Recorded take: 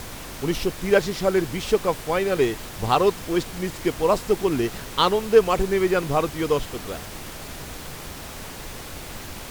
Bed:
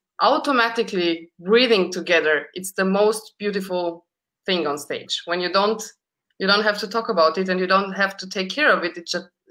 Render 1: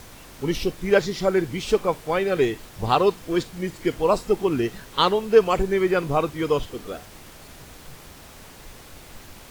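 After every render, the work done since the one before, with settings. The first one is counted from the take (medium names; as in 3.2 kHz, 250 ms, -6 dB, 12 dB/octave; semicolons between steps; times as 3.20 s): noise print and reduce 8 dB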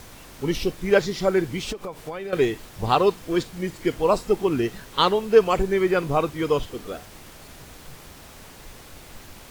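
1.72–2.33 s: compression 16:1, threshold -28 dBFS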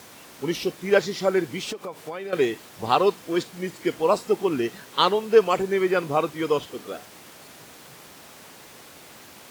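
high-pass 140 Hz 12 dB/octave; bass shelf 200 Hz -5 dB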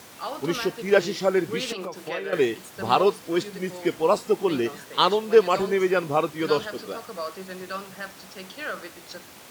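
add bed -16 dB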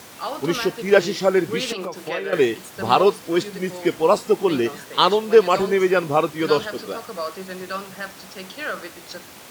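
trim +4 dB; peak limiter -2 dBFS, peak gain reduction 1.5 dB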